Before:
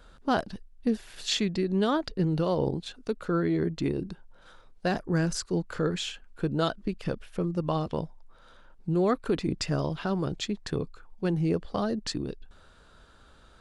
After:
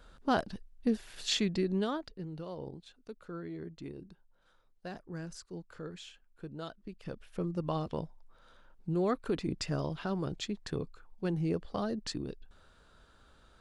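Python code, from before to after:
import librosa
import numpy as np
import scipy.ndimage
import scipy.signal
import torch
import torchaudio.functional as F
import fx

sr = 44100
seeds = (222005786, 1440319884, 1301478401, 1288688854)

y = fx.gain(x, sr, db=fx.line((1.67, -3.0), (2.21, -15.5), (6.82, -15.5), (7.41, -5.5)))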